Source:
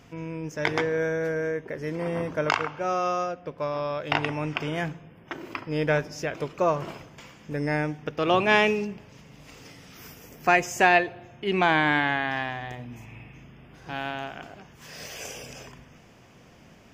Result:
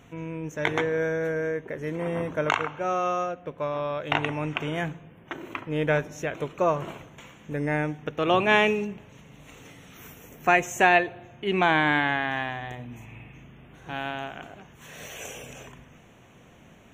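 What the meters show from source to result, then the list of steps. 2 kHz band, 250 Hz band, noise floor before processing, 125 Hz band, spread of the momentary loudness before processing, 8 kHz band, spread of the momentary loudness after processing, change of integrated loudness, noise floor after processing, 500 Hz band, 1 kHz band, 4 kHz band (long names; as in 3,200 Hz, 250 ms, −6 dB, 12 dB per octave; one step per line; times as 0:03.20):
0.0 dB, 0.0 dB, −53 dBFS, 0.0 dB, 22 LU, −1.0 dB, 22 LU, 0.0 dB, −53 dBFS, 0.0 dB, 0.0 dB, −0.5 dB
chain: Butterworth band-reject 4,900 Hz, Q 2.9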